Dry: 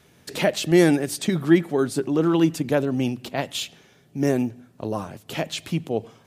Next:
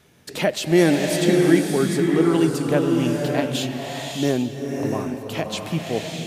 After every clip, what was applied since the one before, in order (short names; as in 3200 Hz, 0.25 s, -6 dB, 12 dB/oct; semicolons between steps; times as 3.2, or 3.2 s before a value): bloom reverb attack 0.64 s, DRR 1 dB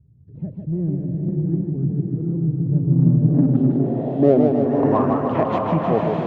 low-pass sweep 110 Hz -> 1100 Hz, 2.69–4.9; in parallel at -9 dB: soft clip -23 dBFS, distortion -8 dB; on the sum: warbling echo 0.153 s, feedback 67%, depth 139 cents, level -4.5 dB; gain +2 dB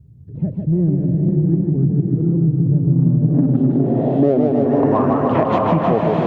compressor 4:1, threshold -21 dBFS, peak gain reduction 10.5 dB; gain +8.5 dB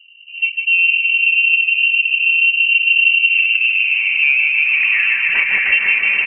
comb 5.2 ms, depth 43%; inverted band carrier 2900 Hz